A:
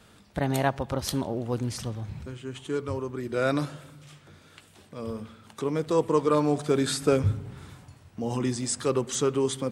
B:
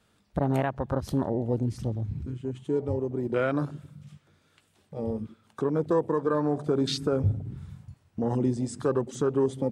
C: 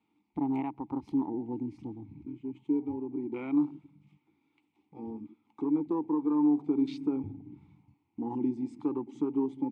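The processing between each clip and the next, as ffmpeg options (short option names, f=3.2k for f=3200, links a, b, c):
-filter_complex "[0:a]afwtdn=0.0251,asplit=2[a][b];[b]acompressor=threshold=-33dB:ratio=6,volume=-2dB[c];[a][c]amix=inputs=2:normalize=0,alimiter=limit=-15.5dB:level=0:latency=1:release=199"
-filter_complex "[0:a]asplit=3[a][b][c];[a]bandpass=f=300:t=q:w=8,volume=0dB[d];[b]bandpass=f=870:t=q:w=8,volume=-6dB[e];[c]bandpass=f=2.24k:t=q:w=8,volume=-9dB[f];[d][e][f]amix=inputs=3:normalize=0,volume=5.5dB"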